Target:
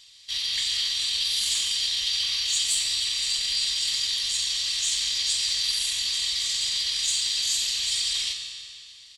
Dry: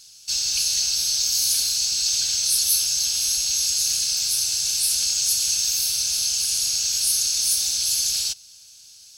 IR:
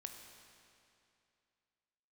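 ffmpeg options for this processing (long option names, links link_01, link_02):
-filter_complex "[0:a]asetrate=32097,aresample=44100,atempo=1.37395,acontrast=55[link_01];[1:a]atrim=start_sample=2205,asetrate=48510,aresample=44100[link_02];[link_01][link_02]afir=irnorm=-1:irlink=0,volume=-4dB"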